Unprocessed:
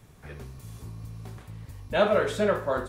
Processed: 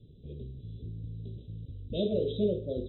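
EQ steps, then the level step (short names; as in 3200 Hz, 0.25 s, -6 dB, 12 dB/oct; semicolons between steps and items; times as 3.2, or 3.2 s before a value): inverse Chebyshev band-stop 850–2100 Hz, stop band 50 dB; brick-wall FIR low-pass 4000 Hz; 0.0 dB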